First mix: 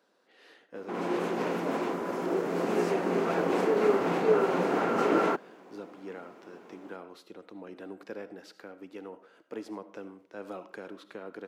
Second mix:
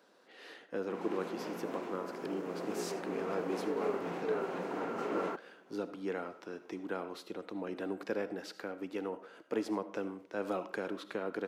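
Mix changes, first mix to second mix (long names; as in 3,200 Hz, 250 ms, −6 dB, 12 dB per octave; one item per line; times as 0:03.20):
speech +5.0 dB
background −11.0 dB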